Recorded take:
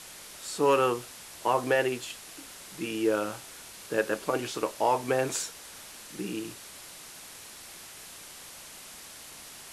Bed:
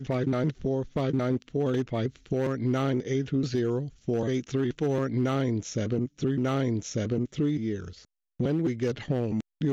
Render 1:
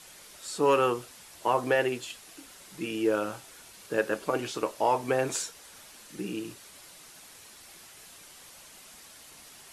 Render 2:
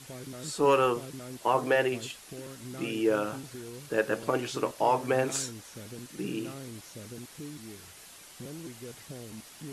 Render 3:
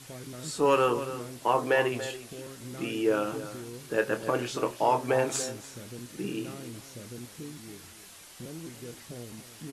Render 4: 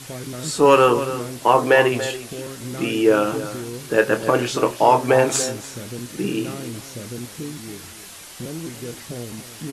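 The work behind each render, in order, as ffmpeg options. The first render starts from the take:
-af "afftdn=nr=6:nf=-47"
-filter_complex "[1:a]volume=0.158[s0];[0:a][s0]amix=inputs=2:normalize=0"
-filter_complex "[0:a]asplit=2[s0][s1];[s1]adelay=25,volume=0.282[s2];[s0][s2]amix=inputs=2:normalize=0,asplit=2[s3][s4];[s4]adelay=285.7,volume=0.224,highshelf=f=4000:g=-6.43[s5];[s3][s5]amix=inputs=2:normalize=0"
-af "volume=3.16"

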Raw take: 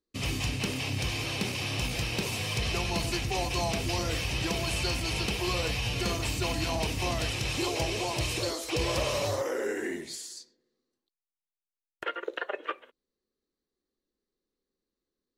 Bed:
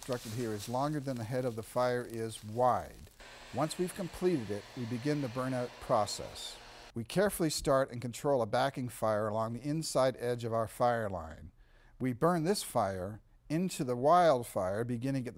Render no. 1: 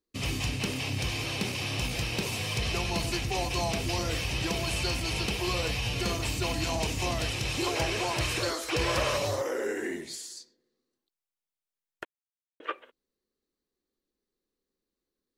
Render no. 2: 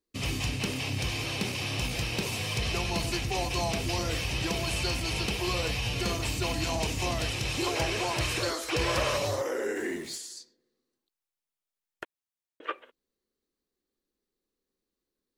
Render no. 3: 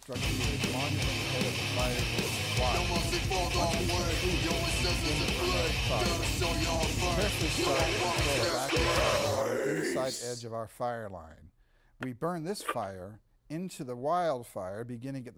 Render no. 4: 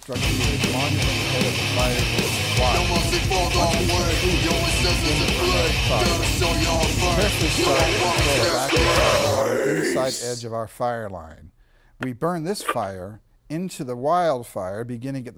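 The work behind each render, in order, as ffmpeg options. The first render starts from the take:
-filter_complex "[0:a]asettb=1/sr,asplit=3[s0][s1][s2];[s0]atrim=end=6.634[s3];[s1]atrim=start=6.63:end=7.06,asetpts=PTS-STARTPTS,afade=t=in:d=0.004:c=qsin,afade=t=out:st=0.426:d=0.004:c=qsin,equalizer=f=7000:t=o:w=0.32:g=6[s4];[s2]atrim=start=7.056[s5];[s3][s4]acrossfade=d=0.004:c1=hsin:c2=qsin[s6];[s6][s5]acrossfade=d=0.004:c1=qsin:c2=hsin,asettb=1/sr,asplit=3[s7][s8][s9];[s7]atrim=end=7.664[s10];[s8]atrim=start=7.66:end=9.17,asetpts=PTS-STARTPTS,afade=t=in:d=0.004:c=qsin,afade=t=out:st=1.506:d=0.004:c=qsin,equalizer=f=1500:w=1.6:g=9.5[s11];[s9]atrim=start=9.166[s12];[s10][s11]acrossfade=d=0.004:c1=hsin:c2=qsin[s13];[s13][s12]acrossfade=d=0.004:c1=qsin:c2=hsin,asplit=3[s14][s15][s16];[s14]atrim=end=12.05,asetpts=PTS-STARTPTS,afade=t=out:st=12.046:d=0.004:c=hsin[s17];[s15]atrim=start=12.05:end=12.6,asetpts=PTS-STARTPTS,volume=0[s18];[s16]atrim=start=12.6,asetpts=PTS-STARTPTS,afade=t=in:d=0.004:c=hsin[s19];[s17][s18][s19]concat=n=3:v=0:a=1"
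-filter_complex "[0:a]asettb=1/sr,asplit=3[s0][s1][s2];[s0]atrim=end=9.764[s3];[s1]atrim=start=9.76:end=10.18,asetpts=PTS-STARTPTS,afade=t=in:d=0.004:c=qsin,afade=t=out:st=0.416:d=0.004:c=qsin,aeval=exprs='val(0)+0.5*0.00562*sgn(val(0))':c=same[s4];[s2]atrim=start=10.176[s5];[s3][s4]acrossfade=d=0.004:c1=hsin:c2=qsin[s6];[s6][s5]acrossfade=d=0.004:c1=qsin:c2=hsin"
-filter_complex "[1:a]volume=0.596[s0];[0:a][s0]amix=inputs=2:normalize=0"
-af "volume=2.99"

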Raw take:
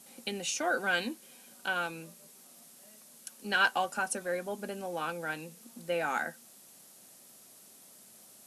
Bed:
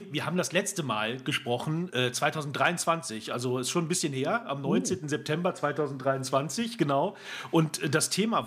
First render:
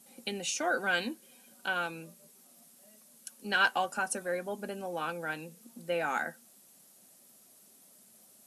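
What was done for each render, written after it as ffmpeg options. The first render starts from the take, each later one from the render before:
-af "afftdn=nr=6:nf=-56"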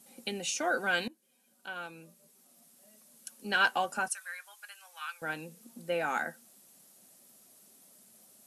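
-filter_complex "[0:a]asettb=1/sr,asplit=3[s0][s1][s2];[s0]atrim=end=4.084[s3];[s1]atrim=start=4.08:end=5.22,asetpts=PTS-STARTPTS,afade=t=in:d=0.004:c=qsin,afade=t=out:st=1.136:d=0.004:c=qsin,highpass=f=1300:w=0.5412,highpass=f=1300:w=1.3066[s4];[s2]atrim=start=5.216[s5];[s3][s4]acrossfade=d=0.004:c1=hsin:c2=qsin[s6];[s6][s5]acrossfade=d=0.004:c1=qsin:c2=hsin,asplit=2[s7][s8];[s7]atrim=end=1.08,asetpts=PTS-STARTPTS,afade=t=out:st=1.076:d=0.004:c=hsin:silence=0.11885[s9];[s8]atrim=start=1.08,asetpts=PTS-STARTPTS,afade=t=in:d=2.24:silence=0.11885[s10];[s9][s10]concat=n=2:v=0:a=1"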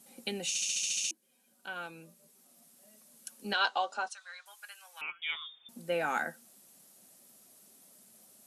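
-filter_complex "[0:a]asettb=1/sr,asplit=3[s0][s1][s2];[s0]atrim=end=3.534[s3];[s1]atrim=start=3.53:end=4.46,asetpts=PTS-STARTPTS,afade=t=in:d=0.004:c=qsin,afade=t=out:st=0.926:d=0.004:c=qsin,highpass=f=330:w=0.5412,highpass=f=330:w=1.3066,equalizer=f=340:t=q:w=4:g=-7,equalizer=f=500:t=q:w=4:g=-3,equalizer=f=1700:t=q:w=4:g=-8,equalizer=f=2400:t=q:w=4:g=-6,equalizer=f=3900:t=q:w=4:g=7,equalizer=f=5500:t=q:w=4:g=-3,lowpass=f=6200:w=0.5412,lowpass=f=6200:w=1.3066[s4];[s2]atrim=start=4.456[s5];[s3][s4]acrossfade=d=0.004:c1=hsin:c2=qsin[s6];[s6][s5]acrossfade=d=0.004:c1=qsin:c2=hsin,asettb=1/sr,asplit=3[s7][s8][s9];[s7]atrim=end=5.014[s10];[s8]atrim=start=5.01:end=5.69,asetpts=PTS-STARTPTS,afade=t=in:d=0.004:c=qsin,afade=t=out:st=0.676:d=0.004:c=qsin,lowpass=f=3200:t=q:w=0.5098,lowpass=f=3200:t=q:w=0.6013,lowpass=f=3200:t=q:w=0.9,lowpass=f=3200:t=q:w=2.563,afreqshift=-3800[s11];[s9]atrim=start=5.686[s12];[s10][s11]acrossfade=d=0.004:c1=hsin:c2=qsin[s13];[s13][s12]acrossfade=d=0.004:c1=qsin:c2=hsin,asplit=10[s14][s15][s16][s17][s18][s19][s20][s21][s22][s23];[s14]atrim=end=0.552[s24];[s15]atrim=start=0.478:end=0.552[s25];[s16]atrim=start=0.478:end=0.552[s26];[s17]atrim=start=0.478:end=0.552[s27];[s18]atrim=start=0.478:end=0.552[s28];[s19]atrim=start=0.478:end=0.552[s29];[s20]atrim=start=0.478:end=0.552[s30];[s21]atrim=start=0.478:end=0.552[s31];[s22]atrim=start=0.478:end=0.552[s32];[s23]atrim=start=1.108[s33];[s24][s25]acrossfade=d=0.004:c1=hsin:c2=hsin[s34];[s34][s26]acrossfade=d=0.004:c1=hsin:c2=hsin[s35];[s35][s27]acrossfade=d=0.004:c1=hsin:c2=hsin[s36];[s36][s28]acrossfade=d=0.004:c1=hsin:c2=hsin[s37];[s37][s29]acrossfade=d=0.004:c1=hsin:c2=hsin[s38];[s38][s30]acrossfade=d=0.004:c1=hsin:c2=hsin[s39];[s39][s31]acrossfade=d=0.004:c1=hsin:c2=hsin[s40];[s40][s32]acrossfade=d=0.004:c1=hsin:c2=hsin[s41];[s41][s33]acrossfade=d=0.004:c1=hsin:c2=hsin"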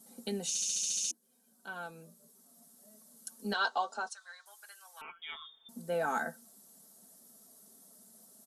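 -af "equalizer=f=2500:w=1.8:g=-14.5,aecho=1:1:4.5:0.52"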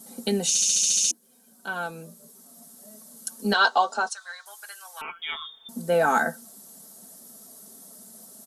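-af "volume=3.76"

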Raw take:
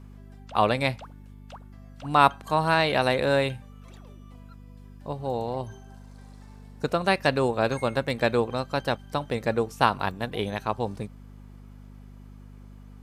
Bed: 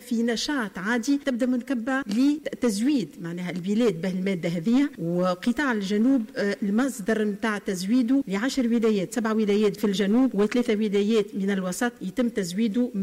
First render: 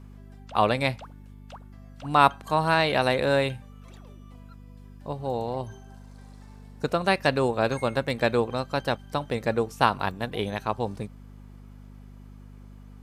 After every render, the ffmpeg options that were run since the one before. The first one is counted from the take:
-af anull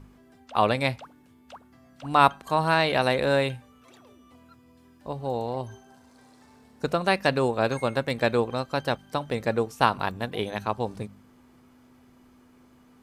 -af "bandreject=f=50:t=h:w=4,bandreject=f=100:t=h:w=4,bandreject=f=150:t=h:w=4,bandreject=f=200:t=h:w=4"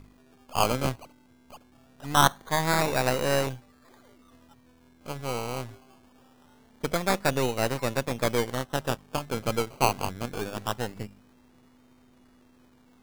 -af "aeval=exprs='if(lt(val(0),0),0.447*val(0),val(0))':c=same,acrusher=samples=19:mix=1:aa=0.000001:lfo=1:lforange=11.4:lforate=0.23"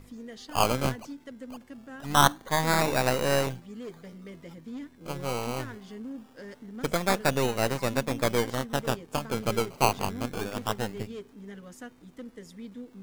-filter_complex "[1:a]volume=0.119[s0];[0:a][s0]amix=inputs=2:normalize=0"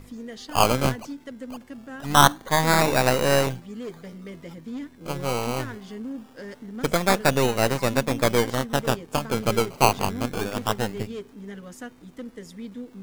-af "volume=1.78,alimiter=limit=0.891:level=0:latency=1"

